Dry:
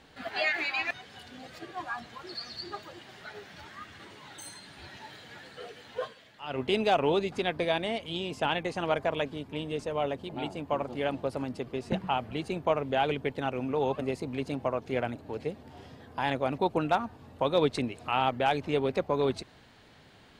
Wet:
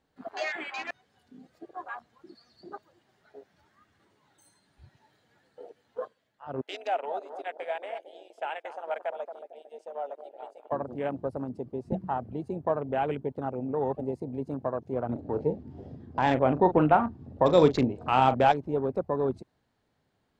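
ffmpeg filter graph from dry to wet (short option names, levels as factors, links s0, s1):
-filter_complex "[0:a]asettb=1/sr,asplit=3[s0][s1][s2];[s0]atrim=end=6.614[s3];[s1]atrim=start=6.61:end=10.72,asetpts=PTS-STARTPTS,afade=t=in:d=0.004:c=qsin,afade=t=out:st=4.106:d=0.004:c=qsin,highpass=f=610:w=0.5412,highpass=f=610:w=1.3066,equalizer=f=1100:w=5.5:g=-15,asplit=2[s4][s5];[s5]adelay=225,lowpass=f=1300:p=1,volume=0.398,asplit=2[s6][s7];[s7]adelay=225,lowpass=f=1300:p=1,volume=0.53,asplit=2[s8][s9];[s9]adelay=225,lowpass=f=1300:p=1,volume=0.53,asplit=2[s10][s11];[s11]adelay=225,lowpass=f=1300:p=1,volume=0.53,asplit=2[s12][s13];[s13]adelay=225,lowpass=f=1300:p=1,volume=0.53,asplit=2[s14][s15];[s15]adelay=225,lowpass=f=1300:p=1,volume=0.53[s16];[s4][s6][s8][s10][s12][s14][s16]amix=inputs=7:normalize=0,atrim=end_sample=181251[s17];[s2]atrim=start=10.716[s18];[s3][s17]acrossfade=d=0.004:c1=hsin:c2=qsin[s19];[s19][s18]acrossfade=d=0.004:c1=qsin:c2=hsin,asettb=1/sr,asplit=3[s20][s21][s22];[s20]atrim=end=15.094[s23];[s21]atrim=start=15.09:end=18.52,asetpts=PTS-STARTPTS,afade=t=in:d=0.004:c=qsin,afade=t=out:st=3.426:d=0.004:c=qsin,lowpass=5600,acontrast=67,asplit=2[s24][s25];[s25]adelay=39,volume=0.299[s26];[s24][s26]amix=inputs=2:normalize=0,atrim=end_sample=151263[s27];[s22]atrim=start=18.516[s28];[s23][s27]acrossfade=d=0.004:c1=hsin:c2=qsin[s29];[s29][s28]acrossfade=d=0.004:c1=qsin:c2=hsin,afwtdn=0.0178,equalizer=f=2900:t=o:w=1.7:g=-7.5"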